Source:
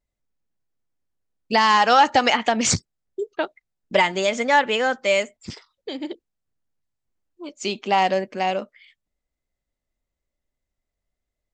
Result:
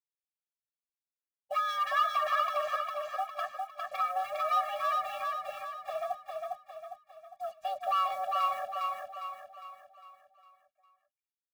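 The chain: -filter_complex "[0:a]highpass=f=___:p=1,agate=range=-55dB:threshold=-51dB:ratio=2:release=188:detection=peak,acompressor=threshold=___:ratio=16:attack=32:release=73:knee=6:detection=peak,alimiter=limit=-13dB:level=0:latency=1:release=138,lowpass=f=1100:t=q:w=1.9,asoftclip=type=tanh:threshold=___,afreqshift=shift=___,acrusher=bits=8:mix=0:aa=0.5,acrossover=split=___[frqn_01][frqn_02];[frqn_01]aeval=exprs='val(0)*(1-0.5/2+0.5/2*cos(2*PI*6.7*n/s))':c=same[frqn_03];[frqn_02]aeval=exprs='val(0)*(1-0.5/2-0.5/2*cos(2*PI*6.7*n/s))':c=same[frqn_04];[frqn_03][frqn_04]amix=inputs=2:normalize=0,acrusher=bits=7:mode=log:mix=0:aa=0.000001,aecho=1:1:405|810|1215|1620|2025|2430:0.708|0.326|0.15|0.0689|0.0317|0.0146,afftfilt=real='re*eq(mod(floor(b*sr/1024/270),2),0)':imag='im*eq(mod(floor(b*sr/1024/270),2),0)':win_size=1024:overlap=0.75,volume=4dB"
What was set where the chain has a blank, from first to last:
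400, -28dB, -25dB, 370, 1100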